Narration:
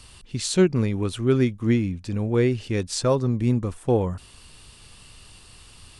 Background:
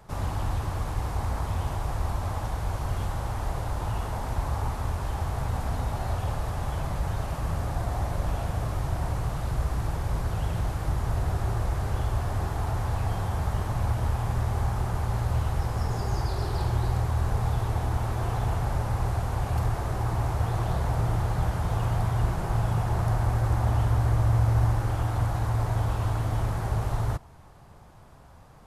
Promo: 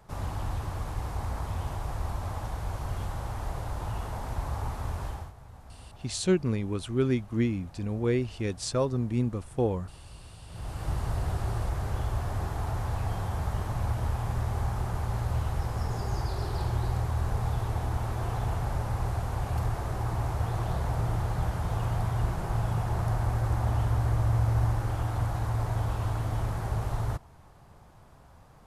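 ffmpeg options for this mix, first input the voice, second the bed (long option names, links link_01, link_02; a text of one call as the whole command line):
ffmpeg -i stem1.wav -i stem2.wav -filter_complex "[0:a]adelay=5700,volume=-6dB[link_01];[1:a]volume=13dB,afade=type=out:start_time=5.05:duration=0.28:silence=0.158489,afade=type=in:start_time=10.47:duration=0.45:silence=0.141254[link_02];[link_01][link_02]amix=inputs=2:normalize=0" out.wav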